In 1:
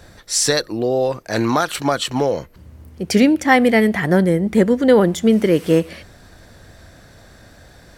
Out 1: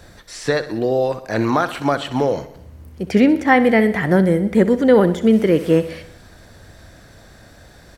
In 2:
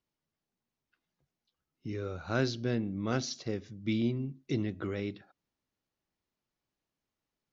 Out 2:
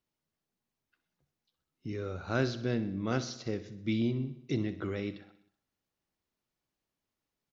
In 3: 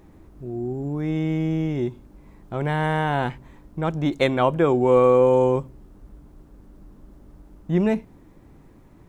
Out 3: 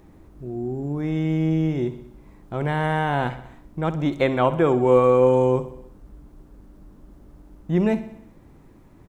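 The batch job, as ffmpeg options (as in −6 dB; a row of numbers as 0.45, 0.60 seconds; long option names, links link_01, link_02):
-filter_complex "[0:a]acrossover=split=2900[link_01][link_02];[link_02]acompressor=threshold=-39dB:ratio=4:attack=1:release=60[link_03];[link_01][link_03]amix=inputs=2:normalize=0,asplit=2[link_04][link_05];[link_05]aecho=0:1:63|126|189|252|315|378:0.188|0.111|0.0656|0.0387|0.0228|0.0135[link_06];[link_04][link_06]amix=inputs=2:normalize=0"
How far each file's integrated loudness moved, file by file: 0.0, 0.0, +0.5 LU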